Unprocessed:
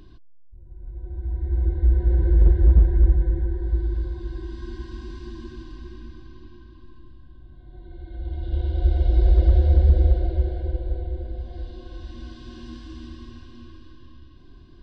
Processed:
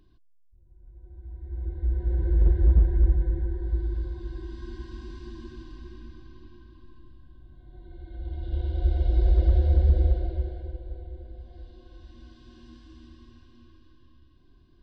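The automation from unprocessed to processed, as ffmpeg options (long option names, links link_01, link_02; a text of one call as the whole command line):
ffmpeg -i in.wav -af "volume=-4dB,afade=type=in:start_time=1.42:duration=1.16:silence=0.354813,afade=type=out:start_time=10.03:duration=0.75:silence=0.473151" out.wav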